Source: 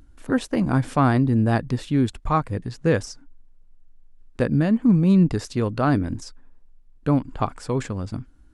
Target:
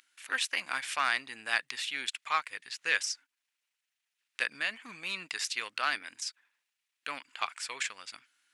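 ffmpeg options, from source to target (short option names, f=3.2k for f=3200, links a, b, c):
-af "aeval=exprs='0.501*(cos(1*acos(clip(val(0)/0.501,-1,1)))-cos(1*PI/2))+0.0126*(cos(7*acos(clip(val(0)/0.501,-1,1)))-cos(7*PI/2))':c=same,acontrast=34,highpass=f=2.3k:t=q:w=1.8,volume=-1dB"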